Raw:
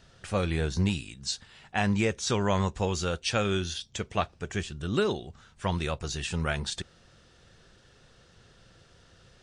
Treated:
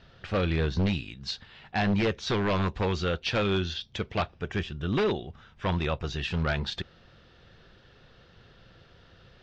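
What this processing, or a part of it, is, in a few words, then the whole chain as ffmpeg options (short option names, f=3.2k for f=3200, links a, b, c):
synthesiser wavefolder: -filter_complex "[0:a]aeval=exprs='0.0841*(abs(mod(val(0)/0.0841+3,4)-2)-1)':c=same,lowpass=f=4.3k:w=0.5412,lowpass=f=4.3k:w=1.3066,asettb=1/sr,asplit=3[a][b][c];[a]atrim=end=4.304[d];[b]atrim=start=4.3:end=6.19,asetpts=PTS-STARTPTS,afade=t=in:d=0.004:c=qsin,afade=t=out:st=1.886:d=0.004:c=qsin,bandreject=f=4.3k:w=7.3[e];[c]atrim=start=6.186[f];[d][e]acrossfade=d=0.004:c1=hsin:c2=qsin[g];[g][f]acrossfade=d=0.004:c1=qsin:c2=hsin,volume=2.5dB"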